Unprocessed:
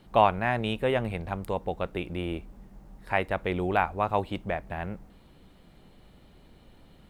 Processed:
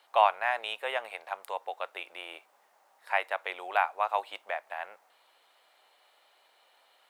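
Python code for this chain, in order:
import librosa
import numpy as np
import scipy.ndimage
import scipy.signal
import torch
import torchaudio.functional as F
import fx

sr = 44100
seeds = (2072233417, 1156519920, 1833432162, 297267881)

y = scipy.signal.sosfilt(scipy.signal.butter(4, 670.0, 'highpass', fs=sr, output='sos'), x)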